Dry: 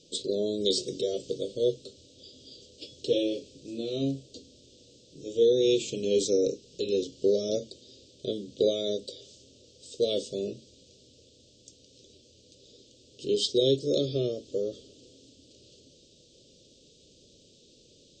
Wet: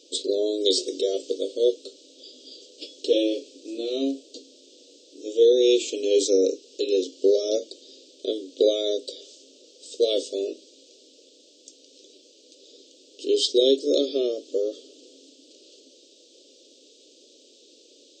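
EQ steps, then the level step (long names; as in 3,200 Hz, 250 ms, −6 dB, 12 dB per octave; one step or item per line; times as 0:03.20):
linear-phase brick-wall high-pass 250 Hz
+5.0 dB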